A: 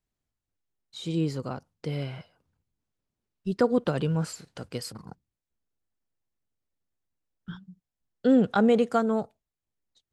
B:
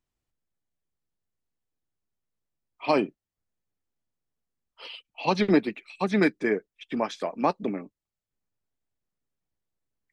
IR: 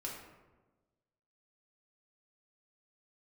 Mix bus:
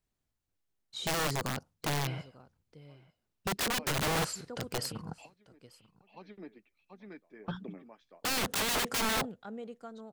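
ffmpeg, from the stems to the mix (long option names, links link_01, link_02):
-filter_complex "[0:a]volume=1dB,asplit=3[link_01][link_02][link_03];[link_02]volume=-23dB[link_04];[1:a]lowpass=5300,highshelf=frequency=4100:gain=-5.5,volume=-16dB,asplit=2[link_05][link_06];[link_06]volume=-11dB[link_07];[link_03]apad=whole_len=446611[link_08];[link_05][link_08]sidechaingate=range=-28dB:threshold=-57dB:ratio=16:detection=peak[link_09];[link_04][link_07]amix=inputs=2:normalize=0,aecho=0:1:891:1[link_10];[link_01][link_09][link_10]amix=inputs=3:normalize=0,aeval=exprs='(mod(18.8*val(0)+1,2)-1)/18.8':channel_layout=same"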